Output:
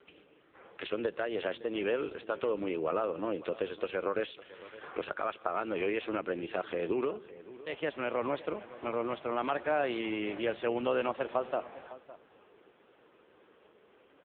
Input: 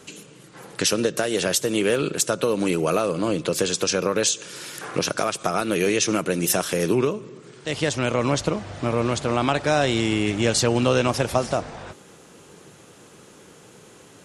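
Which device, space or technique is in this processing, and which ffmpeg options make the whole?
satellite phone: -af "highpass=330,lowpass=3k,aecho=1:1:558:0.141,volume=-7.5dB" -ar 8000 -c:a libopencore_amrnb -b:a 5900

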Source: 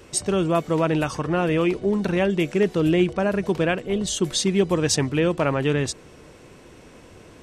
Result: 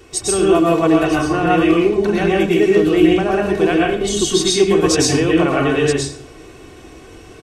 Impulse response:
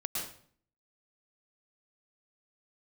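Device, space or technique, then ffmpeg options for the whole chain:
microphone above a desk: -filter_complex "[0:a]aecho=1:1:2.7:0.58[a];[1:a]atrim=start_sample=2205[b];[a][b]afir=irnorm=-1:irlink=0,volume=2.5dB"

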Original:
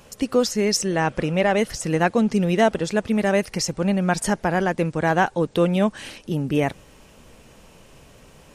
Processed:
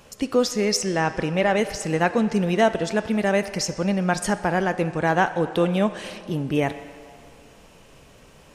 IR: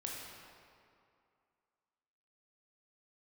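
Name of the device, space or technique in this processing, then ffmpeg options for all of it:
filtered reverb send: -filter_complex "[0:a]asplit=2[a][b];[b]highpass=f=420:p=1,lowpass=7.9k[c];[1:a]atrim=start_sample=2205[d];[c][d]afir=irnorm=-1:irlink=0,volume=-7dB[e];[a][e]amix=inputs=2:normalize=0,volume=-2.5dB"

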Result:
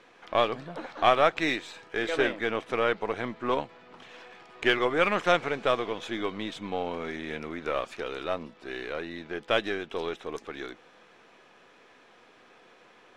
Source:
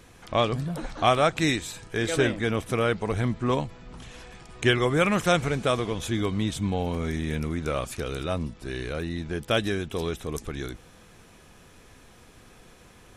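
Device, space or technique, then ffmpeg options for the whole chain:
crystal radio: -af "highpass=380,lowpass=3.4k,aeval=exprs='if(lt(val(0),0),0.708*val(0),val(0))':c=same,volume=1.5dB"

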